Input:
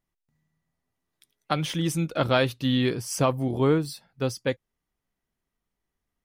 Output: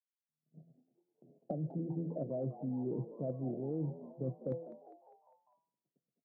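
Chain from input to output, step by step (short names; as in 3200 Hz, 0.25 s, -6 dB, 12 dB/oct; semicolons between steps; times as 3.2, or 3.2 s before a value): recorder AGC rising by 52 dB/s; gate -46 dBFS, range -40 dB; Chebyshev band-pass 130–680 Hz, order 5; de-hum 167 Hz, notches 30; reverse; compressor 16:1, threshold -32 dBFS, peak gain reduction 16.5 dB; reverse; hard clip -24.5 dBFS, distortion -44 dB; frequency-shifting echo 0.201 s, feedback 53%, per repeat +95 Hz, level -15 dB; gain -2 dB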